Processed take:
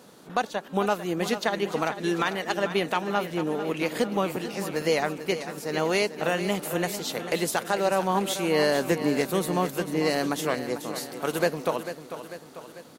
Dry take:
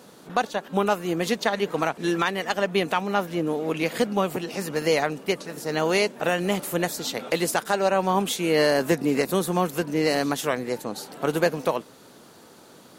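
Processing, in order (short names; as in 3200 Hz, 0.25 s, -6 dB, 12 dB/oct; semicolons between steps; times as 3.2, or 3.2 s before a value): 10.83–11.39 tilt +1.5 dB/oct; on a send: feedback echo 0.445 s, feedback 54%, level -11 dB; on the sum: gain -2.5 dB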